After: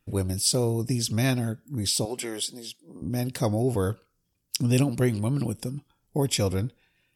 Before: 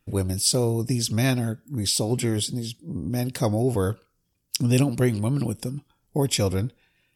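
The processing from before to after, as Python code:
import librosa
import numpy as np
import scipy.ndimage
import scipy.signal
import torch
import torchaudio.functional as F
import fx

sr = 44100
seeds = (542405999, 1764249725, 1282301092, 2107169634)

y = fx.highpass(x, sr, hz=430.0, slope=12, at=(2.05, 3.02))
y = F.gain(torch.from_numpy(y), -2.0).numpy()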